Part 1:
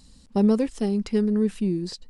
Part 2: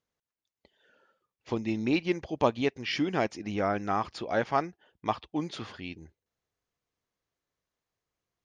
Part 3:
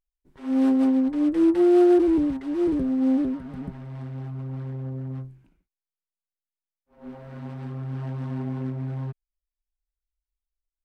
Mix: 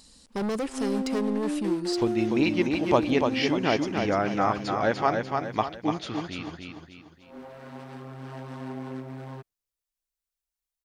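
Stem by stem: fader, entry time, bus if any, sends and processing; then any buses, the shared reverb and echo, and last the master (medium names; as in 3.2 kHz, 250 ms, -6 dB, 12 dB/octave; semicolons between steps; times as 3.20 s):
+2.5 dB, 0.00 s, no send, no echo send, tone controls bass -12 dB, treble +2 dB; hard clipper -28.5 dBFS, distortion -7 dB
+3.0 dB, 0.50 s, no send, echo send -4.5 dB, none
+1.5 dB, 0.30 s, no send, no echo send, tone controls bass -14 dB, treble +5 dB; compression 6:1, threshold -29 dBFS, peak gain reduction 11.5 dB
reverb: none
echo: feedback delay 294 ms, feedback 42%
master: none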